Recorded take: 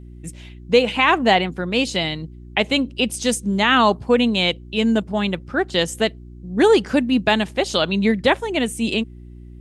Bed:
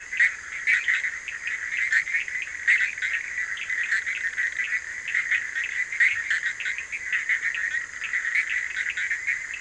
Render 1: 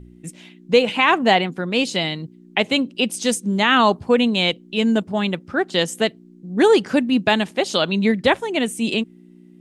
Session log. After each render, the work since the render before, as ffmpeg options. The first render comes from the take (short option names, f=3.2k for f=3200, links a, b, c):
-af "bandreject=f=60:t=h:w=4,bandreject=f=120:t=h:w=4"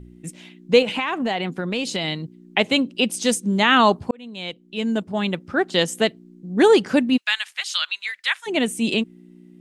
-filter_complex "[0:a]asettb=1/sr,asplit=3[a][b][c];[a]atrim=end=0.824[d];[b]atrim=start=0.82:end=2.08,asetpts=PTS-STARTPTS,afade=t=in:d=0.004:c=qsin,afade=t=out:st=1.256:d=0.004:c=qsin,acompressor=threshold=-20dB:ratio=6:attack=3.2:release=140:knee=1:detection=peak[e];[c]atrim=start=2.076[f];[d][e]acrossfade=d=0.004:c1=hsin:c2=qsin[g];[g][f]acrossfade=d=0.004:c1=qsin:c2=hsin,asplit=3[h][i][j];[h]afade=t=out:st=7.16:d=0.02[k];[i]highpass=f=1.4k:w=0.5412,highpass=f=1.4k:w=1.3066,afade=t=in:st=7.16:d=0.02,afade=t=out:st=8.46:d=0.02[l];[j]afade=t=in:st=8.46:d=0.02[m];[k][l][m]amix=inputs=3:normalize=0,asplit=2[n][o];[n]atrim=end=4.11,asetpts=PTS-STARTPTS,afade=t=out:st=4.106:d=0.004:c=hsin[p];[o]atrim=start=4.11,asetpts=PTS-STARTPTS,afade=t=in:d=1.39[q];[p][q]concat=n=2:v=0:a=1"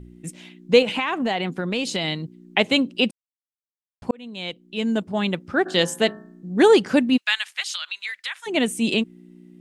-filter_complex "[0:a]asplit=3[a][b][c];[a]afade=t=out:st=5.65:d=0.02[d];[b]bandreject=f=52.93:t=h:w=4,bandreject=f=105.86:t=h:w=4,bandreject=f=158.79:t=h:w=4,bandreject=f=211.72:t=h:w=4,bandreject=f=264.65:t=h:w=4,bandreject=f=317.58:t=h:w=4,bandreject=f=370.51:t=h:w=4,bandreject=f=423.44:t=h:w=4,bandreject=f=476.37:t=h:w=4,bandreject=f=529.3:t=h:w=4,bandreject=f=582.23:t=h:w=4,bandreject=f=635.16:t=h:w=4,bandreject=f=688.09:t=h:w=4,bandreject=f=741.02:t=h:w=4,bandreject=f=793.95:t=h:w=4,bandreject=f=846.88:t=h:w=4,bandreject=f=899.81:t=h:w=4,bandreject=f=952.74:t=h:w=4,bandreject=f=1.00567k:t=h:w=4,bandreject=f=1.0586k:t=h:w=4,bandreject=f=1.11153k:t=h:w=4,bandreject=f=1.16446k:t=h:w=4,bandreject=f=1.21739k:t=h:w=4,bandreject=f=1.27032k:t=h:w=4,bandreject=f=1.32325k:t=h:w=4,bandreject=f=1.37618k:t=h:w=4,bandreject=f=1.42911k:t=h:w=4,bandreject=f=1.48204k:t=h:w=4,bandreject=f=1.53497k:t=h:w=4,bandreject=f=1.5879k:t=h:w=4,bandreject=f=1.64083k:t=h:w=4,bandreject=f=1.69376k:t=h:w=4,bandreject=f=1.74669k:t=h:w=4,bandreject=f=1.79962k:t=h:w=4,afade=t=in:st=5.65:d=0.02,afade=t=out:st=6.59:d=0.02[e];[c]afade=t=in:st=6.59:d=0.02[f];[d][e][f]amix=inputs=3:normalize=0,asettb=1/sr,asplit=3[g][h][i];[g]atrim=end=7.634[j];[h]atrim=start=7.63:end=8.54,asetpts=PTS-STARTPTS,afade=t=in:d=0.004:c=qsin,afade=t=out:st=0.906:d=0.004:c=qsin,acompressor=threshold=-25dB:ratio=6:attack=3.2:release=140:knee=1:detection=peak[k];[i]atrim=start=8.536[l];[j][k]acrossfade=d=0.004:c1=hsin:c2=qsin[m];[m][l]acrossfade=d=0.004:c1=qsin:c2=hsin,asplit=3[n][o][p];[n]atrim=end=3.11,asetpts=PTS-STARTPTS,afade=t=out:st=3.106:d=0.004:c=hsin[q];[o]atrim=start=3.11:end=4.02,asetpts=PTS-STARTPTS,volume=0[r];[p]atrim=start=4.02,asetpts=PTS-STARTPTS,afade=t=in:d=0.004:c=hsin[s];[q][r][s]concat=n=3:v=0:a=1"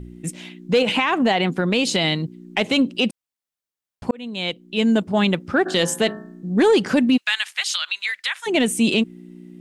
-af "acontrast=48,alimiter=limit=-9.5dB:level=0:latency=1:release=59"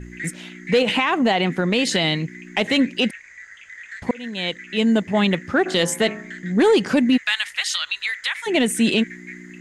-filter_complex "[1:a]volume=-12.5dB[a];[0:a][a]amix=inputs=2:normalize=0"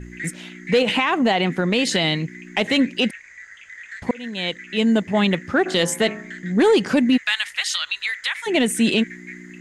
-af anull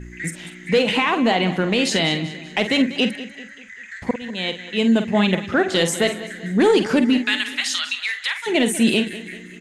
-filter_complex "[0:a]asplit=2[a][b];[b]adelay=48,volume=-9.5dB[c];[a][c]amix=inputs=2:normalize=0,aecho=1:1:194|388|582|776:0.178|0.08|0.036|0.0162"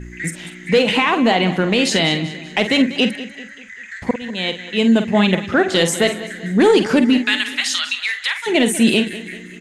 -af "volume=3dB"